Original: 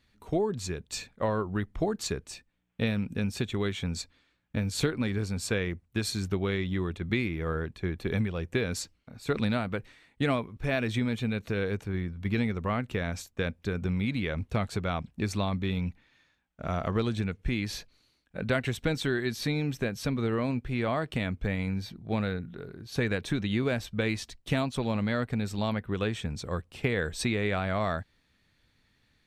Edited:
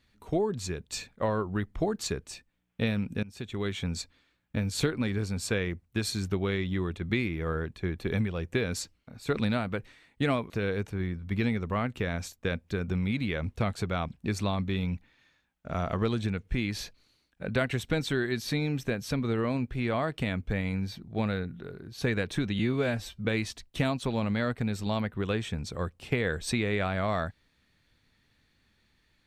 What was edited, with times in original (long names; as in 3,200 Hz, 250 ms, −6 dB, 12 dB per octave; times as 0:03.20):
0:03.23–0:03.76: fade in, from −21 dB
0:10.50–0:11.44: remove
0:23.53–0:23.97: time-stretch 1.5×